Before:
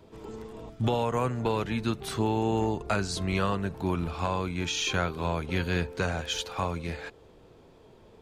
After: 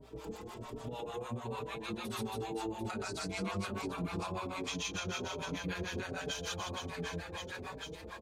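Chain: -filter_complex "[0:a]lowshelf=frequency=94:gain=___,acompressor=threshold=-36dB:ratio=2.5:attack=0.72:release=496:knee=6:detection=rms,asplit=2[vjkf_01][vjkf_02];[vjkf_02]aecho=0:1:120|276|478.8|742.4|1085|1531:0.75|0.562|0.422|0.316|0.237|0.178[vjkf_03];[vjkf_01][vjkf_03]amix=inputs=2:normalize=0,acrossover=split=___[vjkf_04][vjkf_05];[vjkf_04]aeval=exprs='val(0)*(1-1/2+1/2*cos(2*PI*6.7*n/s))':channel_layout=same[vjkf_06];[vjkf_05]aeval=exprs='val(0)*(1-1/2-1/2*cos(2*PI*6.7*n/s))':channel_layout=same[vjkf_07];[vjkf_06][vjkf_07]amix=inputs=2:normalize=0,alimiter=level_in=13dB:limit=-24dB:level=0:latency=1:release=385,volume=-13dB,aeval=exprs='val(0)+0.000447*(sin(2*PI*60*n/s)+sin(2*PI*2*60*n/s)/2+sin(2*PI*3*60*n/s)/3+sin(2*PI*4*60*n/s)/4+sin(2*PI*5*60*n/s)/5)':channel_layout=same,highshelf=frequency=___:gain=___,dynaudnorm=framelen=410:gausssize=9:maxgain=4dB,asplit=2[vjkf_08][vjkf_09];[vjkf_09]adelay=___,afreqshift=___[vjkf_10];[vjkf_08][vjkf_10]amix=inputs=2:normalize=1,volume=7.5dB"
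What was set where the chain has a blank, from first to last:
-10, 590, 6000, 4.5, 4.8, 1.3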